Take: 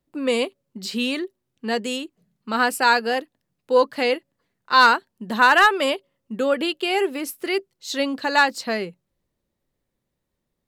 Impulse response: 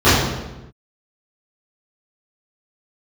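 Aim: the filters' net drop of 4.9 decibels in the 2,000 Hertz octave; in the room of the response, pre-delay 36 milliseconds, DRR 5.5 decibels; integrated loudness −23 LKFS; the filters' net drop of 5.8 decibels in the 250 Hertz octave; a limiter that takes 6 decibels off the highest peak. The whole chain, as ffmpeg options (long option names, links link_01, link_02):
-filter_complex "[0:a]equalizer=frequency=250:width_type=o:gain=-7,equalizer=frequency=2000:width_type=o:gain=-7,alimiter=limit=-12.5dB:level=0:latency=1,asplit=2[link_01][link_02];[1:a]atrim=start_sample=2205,adelay=36[link_03];[link_02][link_03]afir=irnorm=-1:irlink=0,volume=-34dB[link_04];[link_01][link_04]amix=inputs=2:normalize=0,volume=2dB"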